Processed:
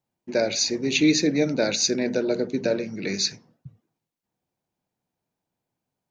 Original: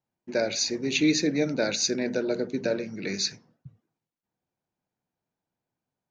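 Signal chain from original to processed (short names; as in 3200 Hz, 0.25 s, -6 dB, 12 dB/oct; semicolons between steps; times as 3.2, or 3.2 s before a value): bell 1500 Hz -3 dB 0.63 oct; gain +3.5 dB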